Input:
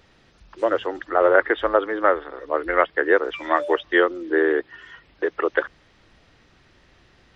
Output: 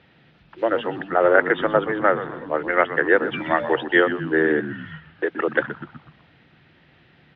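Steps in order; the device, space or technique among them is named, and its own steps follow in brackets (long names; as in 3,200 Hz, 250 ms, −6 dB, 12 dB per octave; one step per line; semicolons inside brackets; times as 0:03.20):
frequency-shifting delay pedal into a guitar cabinet (echo with shifted repeats 124 ms, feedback 50%, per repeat −95 Hz, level −12.5 dB; loudspeaker in its box 110–3,500 Hz, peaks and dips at 150 Hz +8 dB, 410 Hz −4 dB, 580 Hz −3 dB, 1,100 Hz −7 dB)
level +2.5 dB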